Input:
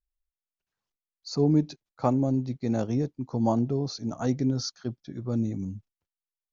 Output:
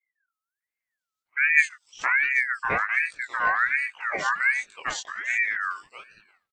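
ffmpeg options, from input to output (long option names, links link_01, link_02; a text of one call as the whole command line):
ffmpeg -i in.wav -filter_complex "[0:a]flanger=delay=19:depth=5.3:speed=1.8,acrossover=split=610|3800[link_01][link_02][link_03];[link_03]adelay=310[link_04];[link_02]adelay=660[link_05];[link_01][link_05][link_04]amix=inputs=3:normalize=0,aeval=exprs='val(0)*sin(2*PI*1700*n/s+1700*0.25/1.3*sin(2*PI*1.3*n/s))':channel_layout=same,volume=8dB" out.wav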